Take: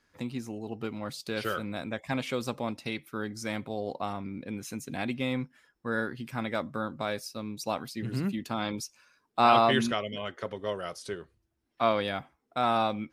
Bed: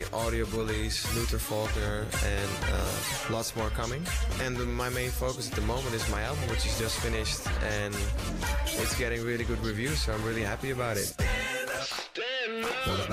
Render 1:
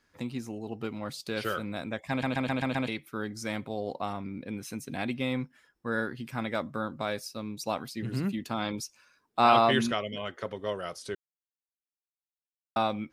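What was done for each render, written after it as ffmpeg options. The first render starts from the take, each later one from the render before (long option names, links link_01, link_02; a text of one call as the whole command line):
ffmpeg -i in.wav -filter_complex "[0:a]asettb=1/sr,asplit=3[link_01][link_02][link_03];[link_01]atrim=end=4.344[link_04];[link_02]atrim=start=4.34:end=5.37,asetpts=PTS-STARTPTS,afade=type=in:duration=0.004:curve=qsin,afade=type=out:start_time=1.026:duration=0.004:curve=qsin,bandreject=frequency=6900:width=9.8[link_05];[link_03]atrim=start=5.366[link_06];[link_04][link_05]acrossfade=duration=0.004:curve1=hsin:curve2=qsin[link_07];[link_07][link_06]acrossfade=duration=0.004:curve1=qsin:curve2=hsin,asplit=9[link_08][link_09][link_10][link_11][link_12][link_13][link_14][link_15][link_16];[link_08]atrim=end=2.232[link_17];[link_09]atrim=start=2.098:end=2.232[link_18];[link_10]atrim=start=2.098:end=2.232[link_19];[link_11]atrim=start=2.098:end=2.232[link_20];[link_12]atrim=start=2.098:end=2.232[link_21];[link_13]atrim=start=2.098:end=2.232[link_22];[link_14]atrim=start=2.878:end=11.15,asetpts=PTS-STARTPTS,afade=type=out:start_time=8.268:duration=0.004:curve=hsin[link_23];[link_15]atrim=start=11.15:end=12.76,asetpts=PTS-STARTPTS,volume=0[link_24];[link_16]atrim=start=12.76,asetpts=PTS-STARTPTS,afade=type=in:duration=0.004:curve=hsin[link_25];[link_17][link_18]acrossfade=duration=0.004:curve1=hsin:curve2=hsin[link_26];[link_26][link_19]acrossfade=duration=0.004:curve1=hsin:curve2=hsin[link_27];[link_27][link_20]acrossfade=duration=0.004:curve1=hsin:curve2=hsin[link_28];[link_28][link_21]acrossfade=duration=0.004:curve1=hsin:curve2=hsin[link_29];[link_29][link_22]acrossfade=duration=0.004:curve1=hsin:curve2=hsin[link_30];[link_23][link_24][link_25]concat=n=3:v=0:a=1[link_31];[link_30][link_31]acrossfade=duration=0.004:curve1=hsin:curve2=hsin" out.wav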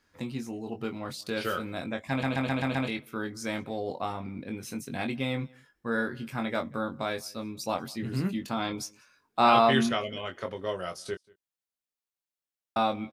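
ffmpeg -i in.wav -filter_complex "[0:a]asplit=2[link_01][link_02];[link_02]adelay=22,volume=-6dB[link_03];[link_01][link_03]amix=inputs=2:normalize=0,asplit=2[link_04][link_05];[link_05]adelay=186.6,volume=-26dB,highshelf=frequency=4000:gain=-4.2[link_06];[link_04][link_06]amix=inputs=2:normalize=0" out.wav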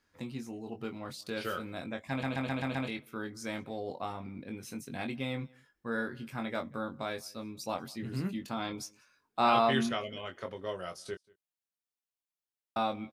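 ffmpeg -i in.wav -af "volume=-5dB" out.wav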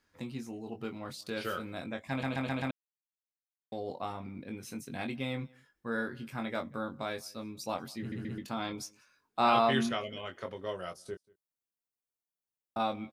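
ffmpeg -i in.wav -filter_complex "[0:a]asettb=1/sr,asplit=3[link_01][link_02][link_03];[link_01]atrim=end=10.934[link_04];[link_02]atrim=start=10.93:end=12.8,asetpts=PTS-STARTPTS,afade=type=in:duration=0.004:curve=qsin,afade=type=out:start_time=1.866:duration=0.004:curve=qsin,equalizer=frequency=3000:width=0.44:gain=-9[link_05];[link_03]atrim=start=12.796[link_06];[link_04][link_05]acrossfade=duration=0.004:curve1=hsin:curve2=qsin[link_07];[link_07][link_06]acrossfade=duration=0.004:curve1=qsin:curve2=hsin,asplit=6[link_08][link_09][link_10][link_11][link_12][link_13];[link_08]atrim=end=2.71,asetpts=PTS-STARTPTS,afade=type=out:start_time=2.706:duration=0.004:curve=hsin[link_14];[link_09]atrim=start=2.71:end=3.72,asetpts=PTS-STARTPTS,volume=0[link_15];[link_10]atrim=start=3.72:end=8.122,asetpts=PTS-STARTPTS,afade=type=in:duration=0.004:curve=hsin[link_16];[link_11]atrim=start=7.988:end=8.122[link_17];[link_12]atrim=start=7.988:end=8.122[link_18];[link_13]atrim=start=8.378[link_19];[link_14][link_15][link_16]concat=n=3:v=0:a=1[link_20];[link_20][link_17]acrossfade=duration=0.004:curve1=hsin:curve2=hsin[link_21];[link_21][link_18]acrossfade=duration=0.004:curve1=hsin:curve2=hsin[link_22];[link_22][link_19]acrossfade=duration=0.004:curve1=hsin:curve2=hsin" out.wav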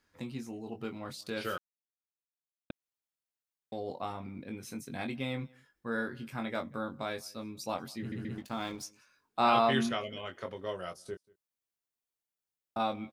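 ffmpeg -i in.wav -filter_complex "[0:a]asettb=1/sr,asplit=3[link_01][link_02][link_03];[link_01]atrim=end=4.664[link_04];[link_02]atrim=start=4.66:end=5.11,asetpts=PTS-STARTPTS,afade=type=in:duration=0.004:curve=qsin,afade=type=out:start_time=0.446:duration=0.004:curve=qsin,bandreject=frequency=2800:width=12[link_05];[link_03]atrim=start=5.106[link_06];[link_04][link_05]acrossfade=duration=0.004:curve1=hsin:curve2=qsin[link_07];[link_07][link_06]acrossfade=duration=0.004:curve1=qsin:curve2=hsin,asettb=1/sr,asplit=3[link_08][link_09][link_10];[link_08]atrim=end=8.344[link_11];[link_09]atrim=start=8.34:end=8.83,asetpts=PTS-STARTPTS,afade=type=in:duration=0.004:curve=qsin,afade=type=out:start_time=0.486:duration=0.004:curve=qsin,aeval=exprs='sgn(val(0))*max(abs(val(0))-0.00237,0)':channel_layout=same[link_12];[link_10]atrim=start=8.826[link_13];[link_11][link_12]acrossfade=duration=0.004:curve1=hsin:curve2=qsin[link_14];[link_14][link_13]acrossfade=duration=0.004:curve1=qsin:curve2=hsin,asplit=3[link_15][link_16][link_17];[link_15]atrim=end=1.58,asetpts=PTS-STARTPTS,afade=type=out:start_time=1.576:duration=0.004:curve=hsin[link_18];[link_16]atrim=start=1.58:end=2.7,asetpts=PTS-STARTPTS,volume=0[link_19];[link_17]atrim=start=2.7,asetpts=PTS-STARTPTS,afade=type=in:duration=0.004:curve=hsin[link_20];[link_18][link_19][link_20]concat=n=3:v=0:a=1" out.wav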